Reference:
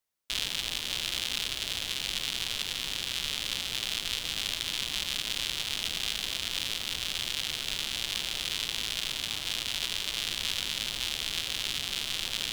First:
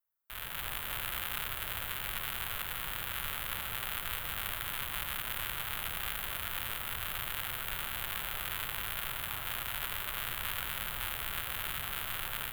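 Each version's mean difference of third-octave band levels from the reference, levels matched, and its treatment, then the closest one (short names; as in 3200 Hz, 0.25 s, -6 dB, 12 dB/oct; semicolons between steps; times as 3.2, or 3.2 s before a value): 6.5 dB: EQ curve 120 Hz 0 dB, 260 Hz -10 dB, 1400 Hz +5 dB, 5500 Hz -24 dB, 14000 Hz +9 dB; AGC gain up to 9 dB; gain -7 dB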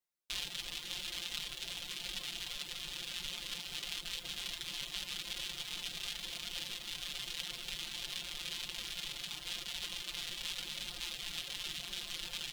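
2.0 dB: reverb removal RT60 0.86 s; comb 5.7 ms, depth 89%; flange 0.92 Hz, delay 5.3 ms, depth 2.1 ms, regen -62%; gain -5 dB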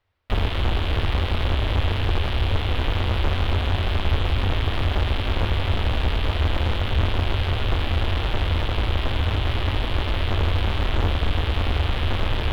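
12.5 dB: resonant low shelf 120 Hz +10 dB, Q 3; sine folder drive 16 dB, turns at -11 dBFS; air absorption 390 m; gain -2 dB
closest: second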